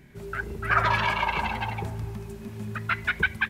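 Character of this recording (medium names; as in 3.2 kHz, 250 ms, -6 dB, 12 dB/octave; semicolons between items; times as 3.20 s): noise floor -43 dBFS; spectral tilt -2.5 dB/octave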